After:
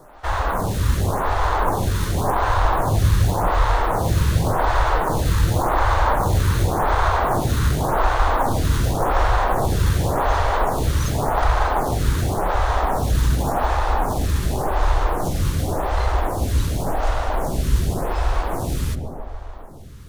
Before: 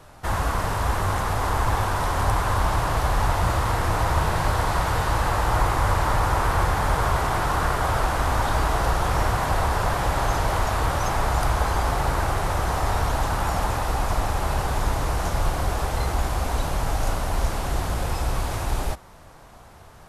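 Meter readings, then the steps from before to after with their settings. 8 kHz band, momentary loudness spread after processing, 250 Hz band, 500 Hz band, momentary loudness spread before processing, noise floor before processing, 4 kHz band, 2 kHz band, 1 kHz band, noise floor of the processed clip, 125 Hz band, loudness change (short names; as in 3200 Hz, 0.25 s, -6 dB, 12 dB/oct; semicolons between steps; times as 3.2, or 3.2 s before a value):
+0.5 dB, 5 LU, +5.0 dB, +4.0 dB, 4 LU, -47 dBFS, +0.5 dB, +0.5 dB, +2.5 dB, -32 dBFS, +4.0 dB, +3.0 dB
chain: in parallel at -7 dB: sample-and-hold 17×; on the sum: darkening echo 0.147 s, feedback 75%, low-pass 990 Hz, level -4 dB; photocell phaser 0.89 Hz; gain +2.5 dB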